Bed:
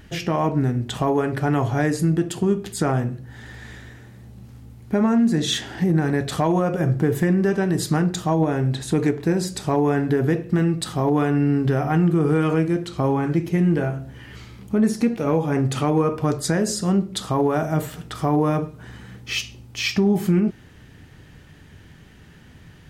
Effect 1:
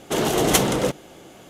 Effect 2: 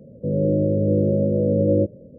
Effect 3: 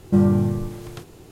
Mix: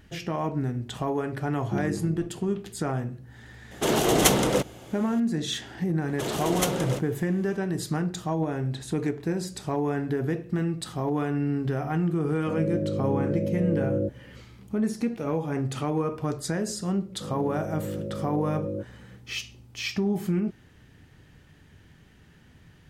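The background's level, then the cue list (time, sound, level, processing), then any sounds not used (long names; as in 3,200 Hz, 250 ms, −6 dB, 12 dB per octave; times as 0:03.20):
bed −7.5 dB
0:01.59: mix in 3 −16.5 dB + auto-filter low-pass square 5.2 Hz 380–2,900 Hz
0:03.71: mix in 1 −1.5 dB
0:06.08: mix in 1 −9 dB
0:12.23: mix in 2 −8.5 dB
0:16.97: mix in 2 −14 dB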